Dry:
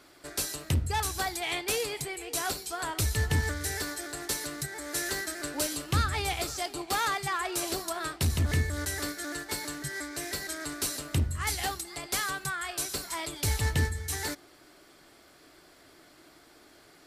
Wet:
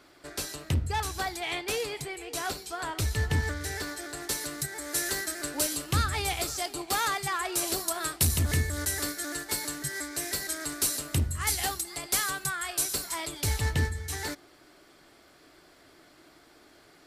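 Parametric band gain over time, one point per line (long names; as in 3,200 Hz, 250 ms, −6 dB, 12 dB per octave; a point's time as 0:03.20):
parametric band 12,000 Hz 1.6 octaves
0:03.83 −5.5 dB
0:04.62 +4.5 dB
0:07.56 +4.5 dB
0:08.26 +13 dB
0:08.67 +6.5 dB
0:12.91 +6.5 dB
0:13.77 −3.5 dB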